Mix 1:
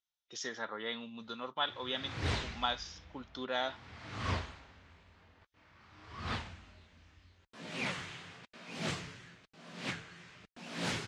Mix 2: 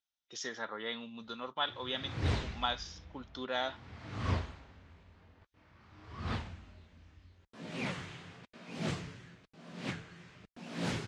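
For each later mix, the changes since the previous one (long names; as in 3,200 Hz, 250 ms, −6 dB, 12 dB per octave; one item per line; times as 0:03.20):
background: add tilt shelving filter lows +4 dB, about 690 Hz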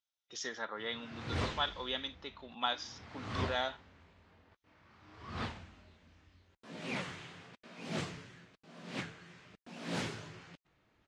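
background: entry −0.90 s
master: add low-shelf EQ 130 Hz −9 dB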